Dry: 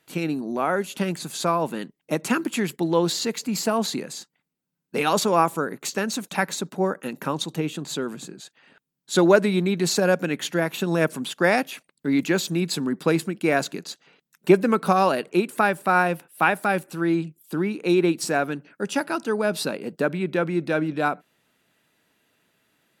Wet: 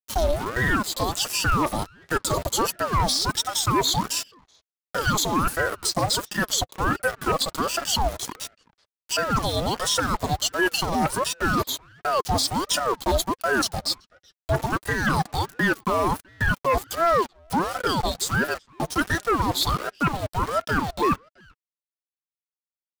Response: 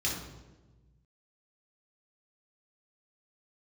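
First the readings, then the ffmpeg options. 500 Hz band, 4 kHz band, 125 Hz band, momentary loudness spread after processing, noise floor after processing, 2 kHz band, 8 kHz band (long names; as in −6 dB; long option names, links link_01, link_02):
−4.0 dB, +6.0 dB, +1.5 dB, 6 LU, below −85 dBFS, +1.0 dB, +5.0 dB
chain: -filter_complex "[0:a]afftfilt=real='re*pow(10,13/40*sin(2*PI*(1.2*log(max(b,1)*sr/1024/100)/log(2)-(-0.76)*(pts-256)/sr)))':imag='im*pow(10,13/40*sin(2*PI*(1.2*log(max(b,1)*sr/1024/100)/log(2)-(-0.76)*(pts-256)/sr)))':win_size=1024:overlap=0.75,highpass=450,afftfilt=real='re*(1-between(b*sr/4096,950,3400))':imag='im*(1-between(b*sr/4096,950,3400))':win_size=4096:overlap=0.75,equalizer=frequency=1400:width=0.93:gain=14,areverse,acompressor=threshold=-25dB:ratio=8,areverse,aeval=exprs='val(0)*gte(abs(val(0)),0.0112)':channel_layout=same,aeval=exprs='0.15*(cos(1*acos(clip(val(0)/0.15,-1,1)))-cos(1*PI/2))+0.0075*(cos(3*acos(clip(val(0)/0.15,-1,1)))-cos(3*PI/2))+0.00133*(cos(5*acos(clip(val(0)/0.15,-1,1)))-cos(5*PI/2))+0.00168*(cos(6*acos(clip(val(0)/0.15,-1,1)))-cos(6*PI/2))+0.00473*(cos(8*acos(clip(val(0)/0.15,-1,1)))-cos(8*PI/2))':channel_layout=same,asplit=2[link_01][link_02];[link_02]alimiter=level_in=3dB:limit=-24dB:level=0:latency=1:release=438,volume=-3dB,volume=-1.5dB[link_03];[link_01][link_03]amix=inputs=2:normalize=0,flanger=delay=2.7:depth=2.1:regen=39:speed=0.24:shape=sinusoidal,aeval=exprs='0.126*sin(PI/2*1.78*val(0)/0.126)':channel_layout=same,asplit=2[link_04][link_05];[link_05]adelay=380,highpass=300,lowpass=3400,asoftclip=type=hard:threshold=-28dB,volume=-23dB[link_06];[link_04][link_06]amix=inputs=2:normalize=0,aeval=exprs='val(0)*sin(2*PI*640*n/s+640*0.6/1.4*sin(2*PI*1.4*n/s))':channel_layout=same,volume=4dB"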